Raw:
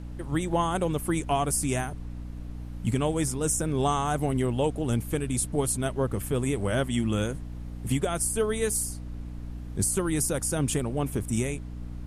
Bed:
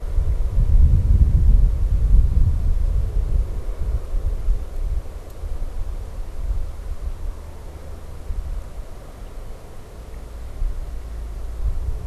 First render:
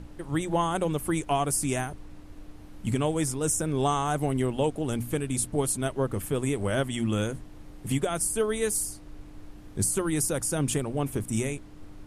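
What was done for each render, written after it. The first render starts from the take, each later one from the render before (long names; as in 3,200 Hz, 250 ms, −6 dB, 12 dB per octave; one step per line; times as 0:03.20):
mains-hum notches 60/120/180/240 Hz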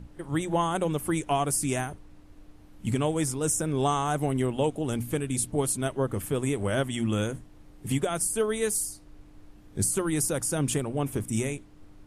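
noise reduction from a noise print 6 dB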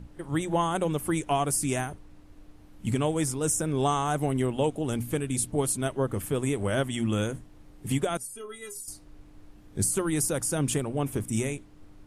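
0:08.17–0:08.88: stiff-string resonator 120 Hz, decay 0.33 s, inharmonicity 0.03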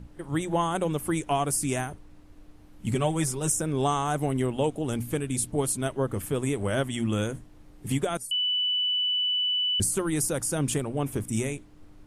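0:02.94–0:03.52: comb filter 5.3 ms
0:08.31–0:09.80: beep over 2,980 Hz −23 dBFS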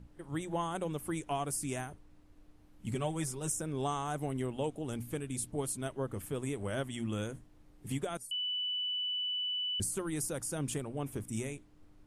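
level −9 dB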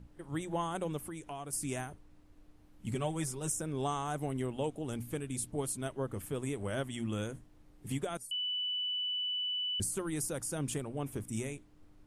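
0:01.06–0:01.53: downward compressor 2.5 to 1, threshold −42 dBFS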